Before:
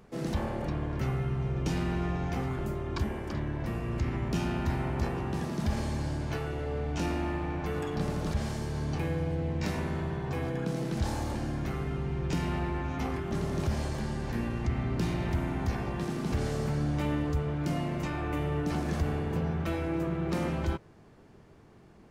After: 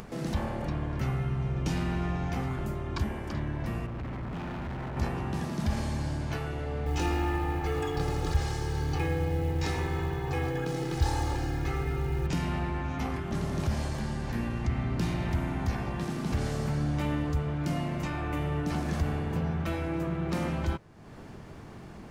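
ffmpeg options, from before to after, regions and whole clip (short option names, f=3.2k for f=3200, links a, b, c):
-filter_complex "[0:a]asettb=1/sr,asplit=3[a][b][c];[a]atrim=end=3.864[d];[b]atrim=start=3.86:end=4.97,asetpts=PTS-STARTPTS,afade=t=in:d=0.004:c=qsin,afade=t=out:st=1.106:d=0.004:c=qsin,lowpass=2k,asoftclip=type=hard:threshold=-35dB[e];[c]atrim=start=4.966[f];[d][e]acrossfade=d=0.004:c1=hsin:c2=qsin[g];[g][f]acrossfade=d=0.004:c1=qsin:c2=hsin,asettb=1/sr,asplit=3[h][i][j];[h]atrim=end=6.864[k];[i]atrim=start=6.86:end=12.27,asetpts=PTS-STARTPTS,afade=t=in:d=0.004:c=qsin,afade=t=out:st=5.406:d=0.004:c=qsin,lowpass=10k,aecho=1:1:2.4:0.89,atrim=end_sample=238581,acrusher=bits=8:mode=log:mix=0:aa=0.000001[l];[j]atrim=start=12.266[m];[k][l]acrossfade=d=0.004:c1=hsin:c2=qsin[n];[n][m]acrossfade=d=0.004:c1=qsin:c2=hsin,equalizer=f=410:t=o:w=0.74:g=-4,acompressor=mode=upward:threshold=-35dB:ratio=2.5,volume=1dB"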